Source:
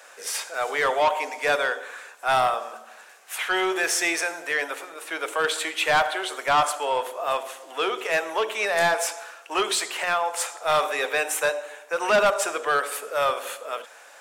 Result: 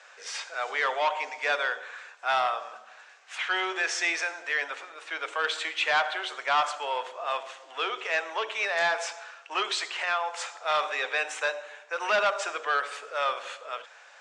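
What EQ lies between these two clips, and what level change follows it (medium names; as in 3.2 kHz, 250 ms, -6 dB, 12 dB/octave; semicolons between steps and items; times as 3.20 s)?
high-pass 1.2 kHz 6 dB/octave; low-pass 7.8 kHz 24 dB/octave; distance through air 89 m; 0.0 dB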